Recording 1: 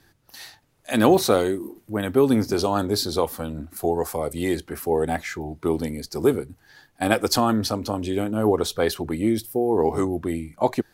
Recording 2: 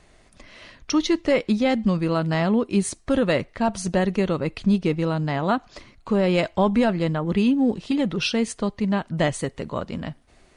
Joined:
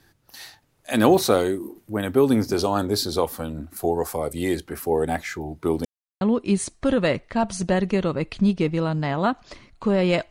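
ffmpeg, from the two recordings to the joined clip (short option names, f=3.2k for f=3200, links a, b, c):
-filter_complex "[0:a]apad=whole_dur=10.3,atrim=end=10.3,asplit=2[a][b];[a]atrim=end=5.85,asetpts=PTS-STARTPTS,afade=t=out:st=5.846:d=0.004:c=hsin[c];[b]atrim=start=5.85:end=6.21,asetpts=PTS-STARTPTS,volume=0[d];[1:a]atrim=start=2.46:end=6.55,asetpts=PTS-STARTPTS,afade=t=in:d=0.004:c=hsin[e];[c][d][e]concat=n=3:v=0:a=1"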